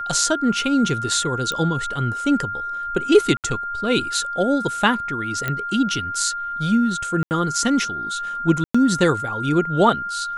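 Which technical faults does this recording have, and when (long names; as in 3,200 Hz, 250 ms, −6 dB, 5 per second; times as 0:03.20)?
whistle 1,400 Hz −25 dBFS
0:01.52: click −12 dBFS
0:03.37–0:03.44: drop-out 68 ms
0:05.48: click −10 dBFS
0:07.23–0:07.31: drop-out 79 ms
0:08.64–0:08.74: drop-out 105 ms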